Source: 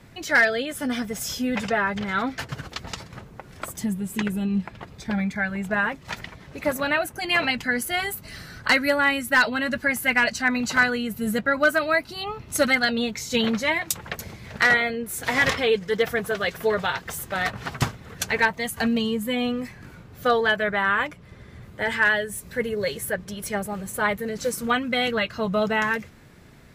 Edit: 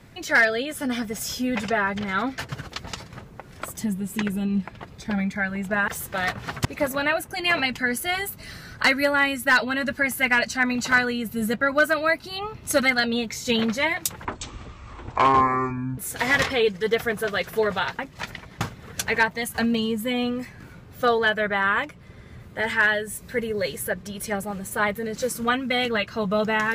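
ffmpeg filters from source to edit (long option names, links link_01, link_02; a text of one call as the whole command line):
ffmpeg -i in.wav -filter_complex "[0:a]asplit=7[link_01][link_02][link_03][link_04][link_05][link_06][link_07];[link_01]atrim=end=5.882[link_08];[link_02]atrim=start=17.058:end=17.832[link_09];[link_03]atrim=start=6.498:end=14.104[link_10];[link_04]atrim=start=14.1:end=15.05,asetpts=PTS-STARTPTS,asetrate=24255,aresample=44100[link_11];[link_05]atrim=start=15.046:end=17.062[link_12];[link_06]atrim=start=5.878:end=6.502[link_13];[link_07]atrim=start=17.828[link_14];[link_08][link_09]acrossfade=duration=0.004:curve1=hsin:curve2=hsin[link_15];[link_15][link_10]acrossfade=duration=0.004:curve1=hsin:curve2=hsin[link_16];[link_16][link_11]acrossfade=duration=0.004:curve1=hsin:curve2=hsin[link_17];[link_17][link_12]acrossfade=duration=0.004:curve1=hsin:curve2=hsin[link_18];[link_18][link_13]acrossfade=duration=0.004:curve1=hsin:curve2=hsin[link_19];[link_19][link_14]acrossfade=duration=0.004:curve1=hsin:curve2=hsin" out.wav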